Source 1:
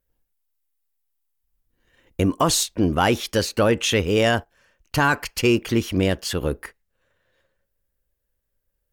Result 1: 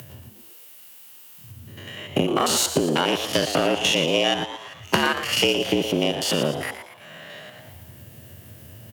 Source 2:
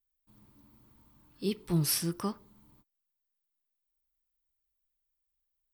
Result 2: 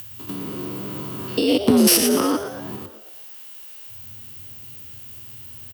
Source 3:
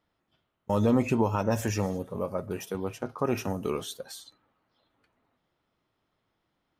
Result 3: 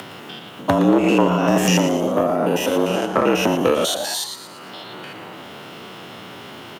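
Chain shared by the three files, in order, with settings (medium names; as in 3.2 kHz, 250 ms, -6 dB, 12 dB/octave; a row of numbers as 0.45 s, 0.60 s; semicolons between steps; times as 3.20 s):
spectrogram pixelated in time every 100 ms; peaking EQ 2.8 kHz +10.5 dB 0.21 oct; compression 8:1, threshold -30 dBFS; Chebyshev shaper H 2 -7 dB, 3 -9 dB, 5 -10 dB, 7 -18 dB, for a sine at -15.5 dBFS; frequency shift +75 Hz; upward compressor, threshold -39 dBFS; on a send: frequency-shifting echo 116 ms, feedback 48%, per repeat +120 Hz, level -10.5 dB; on the sum: peak normalisation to -2 dBFS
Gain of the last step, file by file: +14.5 dB, +21.5 dB, +21.5 dB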